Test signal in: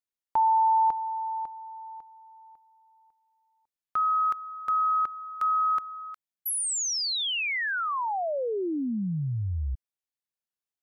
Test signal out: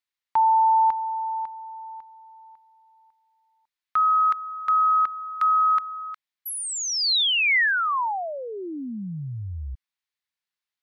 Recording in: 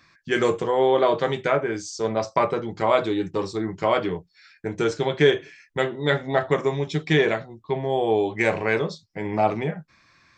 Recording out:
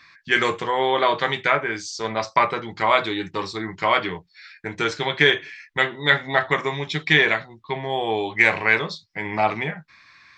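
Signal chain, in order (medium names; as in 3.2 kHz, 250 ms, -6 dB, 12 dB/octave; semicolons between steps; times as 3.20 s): ten-band graphic EQ 500 Hz -3 dB, 1 kHz +6 dB, 2 kHz +10 dB, 4 kHz +9 dB; trim -3 dB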